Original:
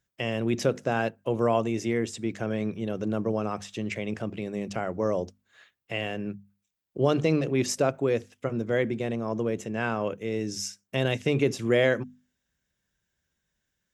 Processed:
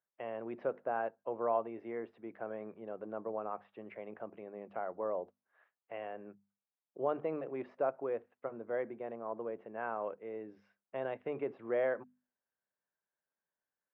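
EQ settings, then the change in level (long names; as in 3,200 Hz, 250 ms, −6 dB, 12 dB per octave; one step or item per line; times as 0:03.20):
four-pole ladder band-pass 1,100 Hz, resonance 20%
high-frequency loss of the air 380 metres
spectral tilt −3.5 dB per octave
+5.5 dB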